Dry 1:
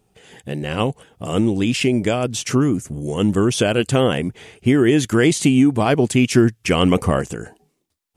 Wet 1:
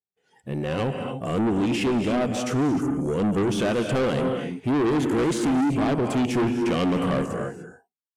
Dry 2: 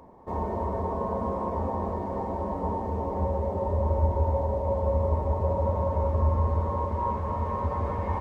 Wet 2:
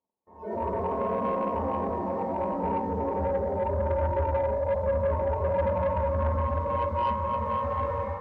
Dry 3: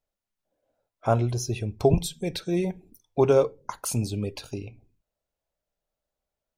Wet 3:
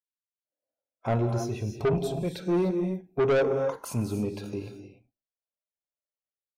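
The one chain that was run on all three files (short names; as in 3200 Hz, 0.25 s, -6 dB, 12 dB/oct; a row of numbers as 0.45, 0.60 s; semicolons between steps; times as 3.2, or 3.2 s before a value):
gate -48 dBFS, range -20 dB; RIAA curve recording; harmonic-percussive split percussive -9 dB; AGC gain up to 6 dB; spectral noise reduction 17 dB; EQ curve 240 Hz 0 dB, 1600 Hz -9 dB, 9200 Hz -27 dB; non-linear reverb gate 0.32 s rising, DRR 7.5 dB; soft clip -25 dBFS; gain +5.5 dB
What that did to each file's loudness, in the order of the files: -6.0, 0.0, -2.0 LU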